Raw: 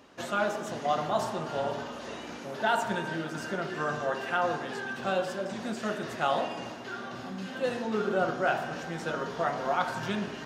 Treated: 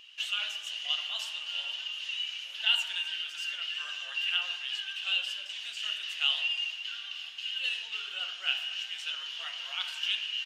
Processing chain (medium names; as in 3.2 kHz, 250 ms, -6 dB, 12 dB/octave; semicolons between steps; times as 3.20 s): resonant high-pass 2.9 kHz, resonance Q 12; vibrato 8.8 Hz 23 cents; speakerphone echo 330 ms, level -27 dB; trim -2 dB